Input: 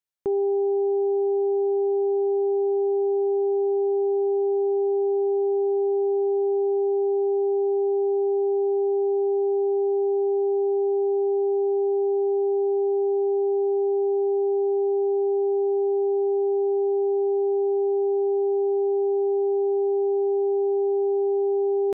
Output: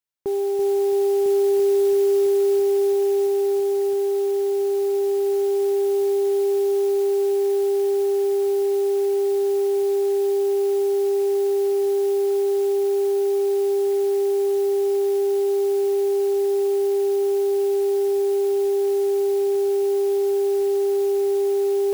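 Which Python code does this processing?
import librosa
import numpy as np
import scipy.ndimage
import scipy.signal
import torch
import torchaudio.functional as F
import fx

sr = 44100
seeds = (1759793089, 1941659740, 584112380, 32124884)

y = fx.echo_heads(x, sr, ms=334, heads='first and third', feedback_pct=74, wet_db=-8.5)
y = fx.mod_noise(y, sr, seeds[0], snr_db=23)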